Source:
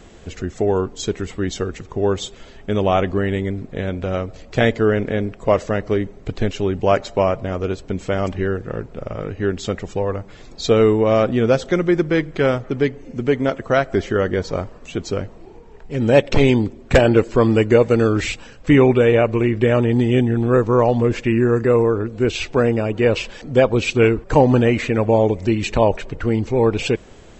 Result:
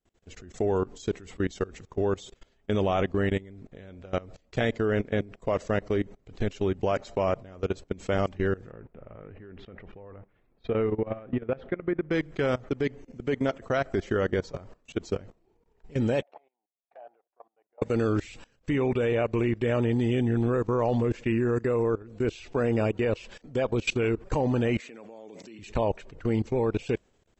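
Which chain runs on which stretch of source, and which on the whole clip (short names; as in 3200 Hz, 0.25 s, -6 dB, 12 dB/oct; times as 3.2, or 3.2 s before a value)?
8.71–12.11 LPF 2500 Hz 24 dB/oct + compressor 12:1, threshold -17 dBFS
16.22–17.82 compressor, threshold -20 dBFS + ladder band-pass 780 Hz, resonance 75%
24.8–25.59 HPF 200 Hz 24 dB/oct + compressor 2.5:1, threshold -24 dBFS + high shelf 2900 Hz +9 dB
whole clip: expander -30 dBFS; high shelf 6000 Hz +3.5 dB; level quantiser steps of 21 dB; gain -3.5 dB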